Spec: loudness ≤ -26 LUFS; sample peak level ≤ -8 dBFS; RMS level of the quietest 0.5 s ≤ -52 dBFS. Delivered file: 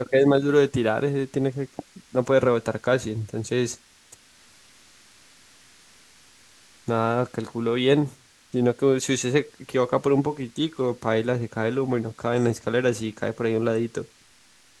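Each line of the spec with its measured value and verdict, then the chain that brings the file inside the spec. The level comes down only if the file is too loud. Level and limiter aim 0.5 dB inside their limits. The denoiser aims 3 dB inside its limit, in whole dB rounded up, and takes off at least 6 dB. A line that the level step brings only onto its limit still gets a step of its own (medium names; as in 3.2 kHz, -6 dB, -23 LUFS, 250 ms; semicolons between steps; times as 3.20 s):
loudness -24.0 LUFS: fail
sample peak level -6.0 dBFS: fail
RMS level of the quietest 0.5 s -56 dBFS: pass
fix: trim -2.5 dB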